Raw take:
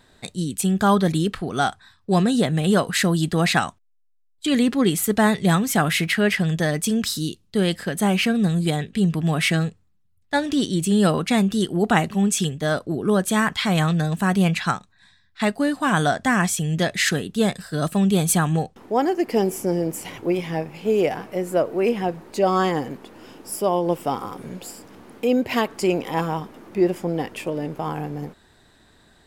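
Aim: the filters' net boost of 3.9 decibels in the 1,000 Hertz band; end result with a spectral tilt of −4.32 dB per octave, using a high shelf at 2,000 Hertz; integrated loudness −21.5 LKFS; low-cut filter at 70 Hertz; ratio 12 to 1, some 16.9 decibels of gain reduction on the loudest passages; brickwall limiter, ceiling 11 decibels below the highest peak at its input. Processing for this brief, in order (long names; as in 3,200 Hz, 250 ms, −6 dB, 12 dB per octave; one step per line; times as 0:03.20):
high-pass filter 70 Hz
parametric band 1,000 Hz +4 dB
high-shelf EQ 2,000 Hz +5.5 dB
downward compressor 12 to 1, threshold −28 dBFS
level +12 dB
brickwall limiter −10.5 dBFS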